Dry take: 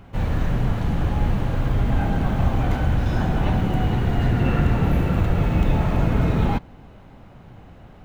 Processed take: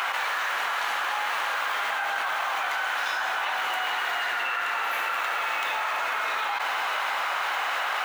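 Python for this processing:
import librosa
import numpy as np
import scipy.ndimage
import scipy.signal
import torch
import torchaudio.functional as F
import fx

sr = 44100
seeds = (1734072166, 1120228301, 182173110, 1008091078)

y = fx.ladder_highpass(x, sr, hz=920.0, resonance_pct=25)
y = fx.env_flatten(y, sr, amount_pct=100)
y = y * librosa.db_to_amplitude(6.5)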